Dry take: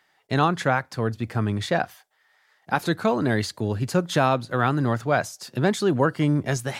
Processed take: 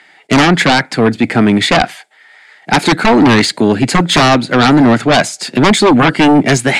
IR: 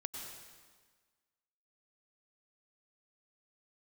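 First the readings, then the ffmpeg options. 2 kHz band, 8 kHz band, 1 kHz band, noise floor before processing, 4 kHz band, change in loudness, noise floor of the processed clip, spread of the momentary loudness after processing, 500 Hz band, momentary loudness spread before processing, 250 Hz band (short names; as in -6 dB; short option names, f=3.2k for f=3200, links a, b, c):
+15.0 dB, +16.0 dB, +12.5 dB, -66 dBFS, +19.5 dB, +13.5 dB, -45 dBFS, 5 LU, +11.5 dB, 6 LU, +15.5 dB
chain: -af "highpass=f=160:w=0.5412,highpass=f=160:w=1.3066,equalizer=f=280:t=q:w=4:g=4,equalizer=f=530:t=q:w=4:g=-4,equalizer=f=1.1k:t=q:w=4:g=-8,equalizer=f=2.2k:t=q:w=4:g=7,equalizer=f=5.8k:t=q:w=4:g=-9,lowpass=f=9.1k:w=0.5412,lowpass=f=9.1k:w=1.3066,aeval=exprs='0.376*sin(PI/2*3.55*val(0)/0.376)':c=same,volume=4.5dB"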